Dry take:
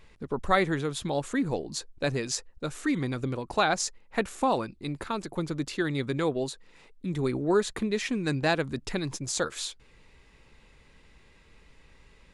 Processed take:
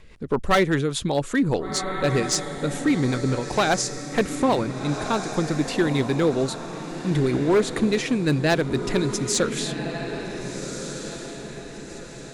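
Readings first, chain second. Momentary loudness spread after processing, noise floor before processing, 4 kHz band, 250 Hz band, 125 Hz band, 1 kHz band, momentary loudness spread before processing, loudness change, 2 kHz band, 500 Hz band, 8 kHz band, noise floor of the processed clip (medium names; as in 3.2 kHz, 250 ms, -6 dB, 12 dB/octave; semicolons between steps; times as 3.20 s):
12 LU, -59 dBFS, +6.0 dB, +7.5 dB, +8.0 dB, +4.0 dB, 10 LU, +6.0 dB, +5.0 dB, +6.5 dB, +7.0 dB, -38 dBFS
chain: rotary cabinet horn 5 Hz; echo that smears into a reverb 1502 ms, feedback 43%, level -9 dB; hard clipper -22 dBFS, distortion -14 dB; trim +8.5 dB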